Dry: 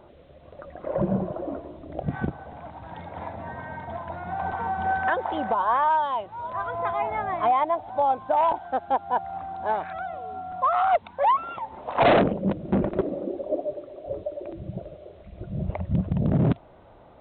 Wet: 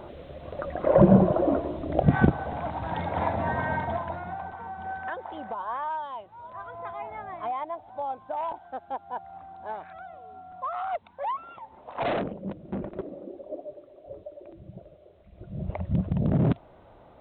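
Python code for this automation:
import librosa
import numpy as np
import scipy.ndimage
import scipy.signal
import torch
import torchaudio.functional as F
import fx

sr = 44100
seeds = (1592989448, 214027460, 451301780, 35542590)

y = fx.gain(x, sr, db=fx.line((3.75, 8.5), (4.27, -2.0), (4.5, -10.0), (15.22, -10.0), (15.81, -1.5)))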